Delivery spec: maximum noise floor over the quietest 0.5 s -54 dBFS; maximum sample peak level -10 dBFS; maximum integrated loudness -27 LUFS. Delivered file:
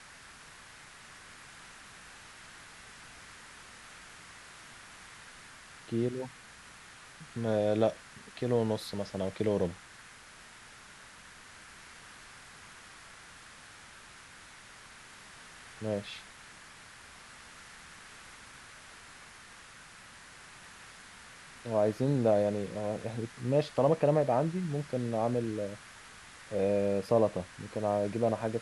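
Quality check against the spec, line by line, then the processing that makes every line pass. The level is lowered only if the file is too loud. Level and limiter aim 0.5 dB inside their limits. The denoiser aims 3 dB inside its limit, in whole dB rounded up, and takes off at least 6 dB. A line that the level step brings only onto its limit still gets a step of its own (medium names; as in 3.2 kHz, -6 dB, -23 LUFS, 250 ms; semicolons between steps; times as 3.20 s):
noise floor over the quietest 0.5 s -53 dBFS: fail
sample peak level -13.5 dBFS: pass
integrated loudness -31.5 LUFS: pass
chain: noise reduction 6 dB, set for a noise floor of -53 dBFS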